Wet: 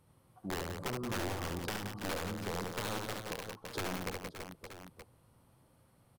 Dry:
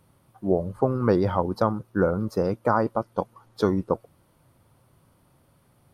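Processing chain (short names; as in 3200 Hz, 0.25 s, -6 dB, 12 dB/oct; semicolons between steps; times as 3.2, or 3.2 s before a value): dynamic EQ 2800 Hz, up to -7 dB, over -44 dBFS, Q 0.76; wrapped overs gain 16 dB; speed mistake 25 fps video run at 24 fps; reverse bouncing-ball echo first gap 70 ms, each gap 1.5×, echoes 5; compressor 2:1, threshold -34 dBFS, peak gain reduction 9.5 dB; gain -7 dB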